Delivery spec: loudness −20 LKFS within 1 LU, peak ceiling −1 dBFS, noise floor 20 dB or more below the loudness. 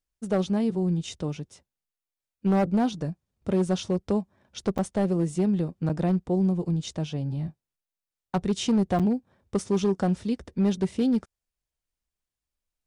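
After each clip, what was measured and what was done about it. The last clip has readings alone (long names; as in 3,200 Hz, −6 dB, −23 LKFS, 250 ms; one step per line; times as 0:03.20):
share of clipped samples 1.3%; peaks flattened at −17.5 dBFS; number of dropouts 3; longest dropout 6.9 ms; integrated loudness −27.0 LKFS; sample peak −17.5 dBFS; target loudness −20.0 LKFS
→ clipped peaks rebuilt −17.5 dBFS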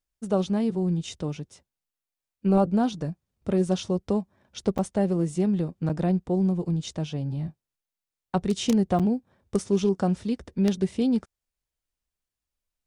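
share of clipped samples 0.0%; number of dropouts 3; longest dropout 6.9 ms
→ repair the gap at 0:04.78/0:05.89/0:08.99, 6.9 ms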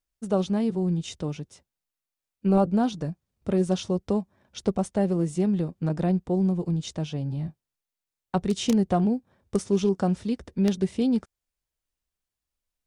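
number of dropouts 0; integrated loudness −26.5 LKFS; sample peak −8.5 dBFS; target loudness −20.0 LKFS
→ level +6.5 dB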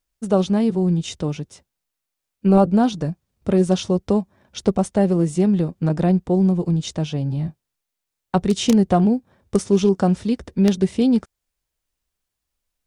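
integrated loudness −20.0 LKFS; sample peak −2.0 dBFS; background noise floor −82 dBFS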